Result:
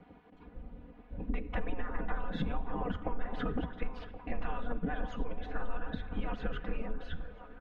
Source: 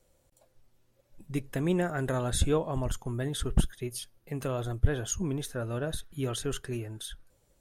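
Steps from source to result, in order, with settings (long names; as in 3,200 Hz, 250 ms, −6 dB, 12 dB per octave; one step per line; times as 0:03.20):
low-pass filter 2,900 Hz 24 dB per octave
gate on every frequency bin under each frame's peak −15 dB weak
spectral tilt −4 dB per octave
comb filter 4.1 ms, depth 94%
brickwall limiter −25 dBFS, peak gain reduction 11 dB
downward compressor 12 to 1, threshold −44 dBFS, peak gain reduction 16.5 dB
echo through a band-pass that steps 564 ms, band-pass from 720 Hz, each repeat 0.7 octaves, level −8 dB
rectangular room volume 3,800 cubic metres, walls mixed, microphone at 0.49 metres
level +14 dB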